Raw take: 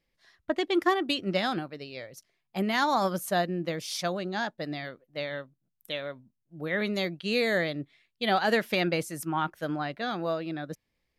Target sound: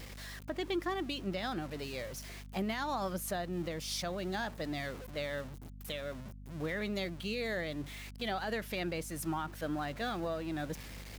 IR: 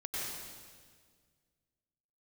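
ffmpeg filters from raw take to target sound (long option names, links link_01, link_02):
-af "aeval=exprs='val(0)+0.5*0.0112*sgn(val(0))':channel_layout=same,highpass=51,alimiter=limit=-23.5dB:level=0:latency=1:release=318,aeval=exprs='val(0)+0.00631*(sin(2*PI*50*n/s)+sin(2*PI*2*50*n/s)/2+sin(2*PI*3*50*n/s)/3+sin(2*PI*4*50*n/s)/4+sin(2*PI*5*50*n/s)/5)':channel_layout=same,volume=-3.5dB"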